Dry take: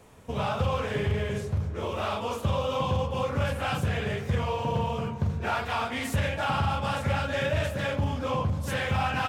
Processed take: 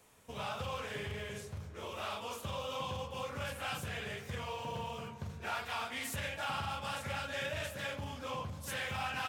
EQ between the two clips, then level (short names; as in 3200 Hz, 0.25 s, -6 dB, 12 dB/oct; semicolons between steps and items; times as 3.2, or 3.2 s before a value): pre-emphasis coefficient 0.9; low shelf 170 Hz -3.5 dB; high shelf 3600 Hz -11 dB; +6.5 dB